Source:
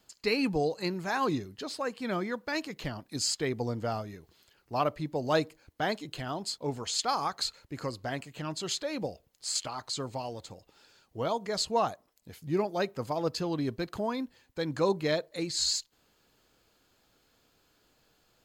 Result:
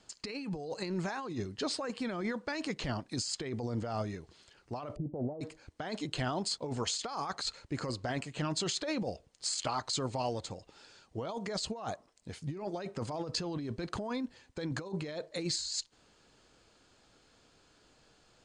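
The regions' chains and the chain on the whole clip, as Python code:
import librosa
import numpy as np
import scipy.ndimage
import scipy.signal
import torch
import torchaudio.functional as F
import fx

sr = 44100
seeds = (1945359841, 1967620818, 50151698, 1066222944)

y = fx.chain(x, sr, fx.steep_lowpass(hz=770.0, slope=48),
    fx.doppler_dist(depth_ms=0.1), at=(4.96, 5.41))
y = scipy.signal.sosfilt(scipy.signal.cheby1(5, 1.0, 9100.0, 'lowpass', fs=sr, output='sos'), y)
y = fx.over_compress(y, sr, threshold_db=-36.0, ratio=-1.0)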